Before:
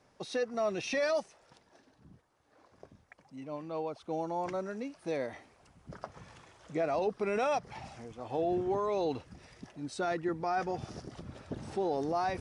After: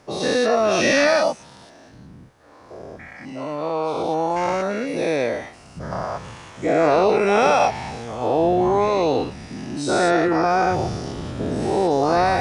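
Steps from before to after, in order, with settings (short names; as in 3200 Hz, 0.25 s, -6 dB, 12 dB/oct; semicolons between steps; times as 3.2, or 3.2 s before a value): spectral dilation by 0.24 s; gain +8.5 dB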